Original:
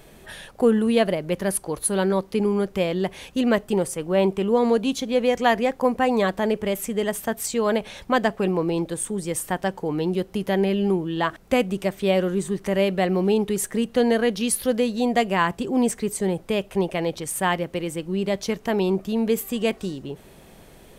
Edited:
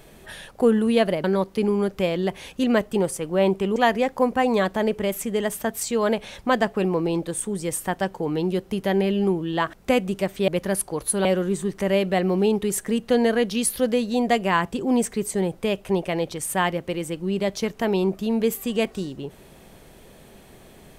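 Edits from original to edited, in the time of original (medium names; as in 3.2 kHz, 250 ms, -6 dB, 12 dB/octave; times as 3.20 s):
1.24–2.01 s: move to 12.11 s
4.53–5.39 s: delete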